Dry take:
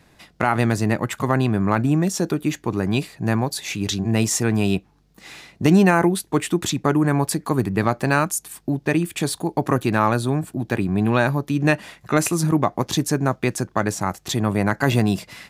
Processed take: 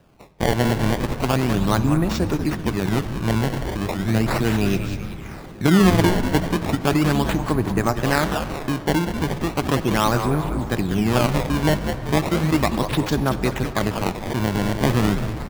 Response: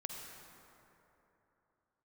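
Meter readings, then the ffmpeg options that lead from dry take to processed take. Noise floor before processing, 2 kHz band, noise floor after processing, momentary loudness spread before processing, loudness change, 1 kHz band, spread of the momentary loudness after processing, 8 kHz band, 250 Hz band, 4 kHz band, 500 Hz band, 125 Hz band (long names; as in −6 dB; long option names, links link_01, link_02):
−57 dBFS, −1.0 dB, −34 dBFS, 6 LU, 0.0 dB, −0.5 dB, 6 LU, −6.0 dB, 0.0 dB, +1.5 dB, 0.0 dB, +0.5 dB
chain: -filter_complex "[0:a]asplit=8[link_01][link_02][link_03][link_04][link_05][link_06][link_07][link_08];[link_02]adelay=192,afreqshift=-90,volume=-7.5dB[link_09];[link_03]adelay=384,afreqshift=-180,volume=-12.5dB[link_10];[link_04]adelay=576,afreqshift=-270,volume=-17.6dB[link_11];[link_05]adelay=768,afreqshift=-360,volume=-22.6dB[link_12];[link_06]adelay=960,afreqshift=-450,volume=-27.6dB[link_13];[link_07]adelay=1152,afreqshift=-540,volume=-32.7dB[link_14];[link_08]adelay=1344,afreqshift=-630,volume=-37.7dB[link_15];[link_01][link_09][link_10][link_11][link_12][link_13][link_14][link_15]amix=inputs=8:normalize=0,acrusher=samples=20:mix=1:aa=0.000001:lfo=1:lforange=32:lforate=0.36,asplit=2[link_16][link_17];[1:a]atrim=start_sample=2205,lowpass=5400[link_18];[link_17][link_18]afir=irnorm=-1:irlink=0,volume=-5.5dB[link_19];[link_16][link_19]amix=inputs=2:normalize=0,volume=-3.5dB"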